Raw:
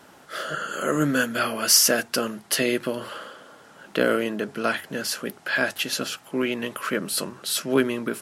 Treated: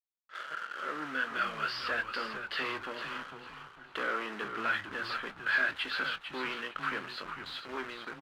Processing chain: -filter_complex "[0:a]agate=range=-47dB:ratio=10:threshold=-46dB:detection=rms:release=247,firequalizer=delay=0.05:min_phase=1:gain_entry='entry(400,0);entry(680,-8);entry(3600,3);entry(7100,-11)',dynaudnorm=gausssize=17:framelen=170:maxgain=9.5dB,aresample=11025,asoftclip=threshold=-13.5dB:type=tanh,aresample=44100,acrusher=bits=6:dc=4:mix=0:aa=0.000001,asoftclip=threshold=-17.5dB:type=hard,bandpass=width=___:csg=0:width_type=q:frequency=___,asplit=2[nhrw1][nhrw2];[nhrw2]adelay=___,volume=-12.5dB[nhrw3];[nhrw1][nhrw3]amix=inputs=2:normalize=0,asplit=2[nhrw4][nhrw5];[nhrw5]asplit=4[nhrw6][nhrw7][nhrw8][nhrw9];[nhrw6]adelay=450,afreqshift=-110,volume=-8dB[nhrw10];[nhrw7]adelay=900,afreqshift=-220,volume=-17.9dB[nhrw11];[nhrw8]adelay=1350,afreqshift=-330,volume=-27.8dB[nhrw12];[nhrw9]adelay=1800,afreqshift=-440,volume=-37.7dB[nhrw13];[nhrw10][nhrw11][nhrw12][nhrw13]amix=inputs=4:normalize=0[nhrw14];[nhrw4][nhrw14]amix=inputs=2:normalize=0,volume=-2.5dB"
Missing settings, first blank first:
1.8, 1400, 23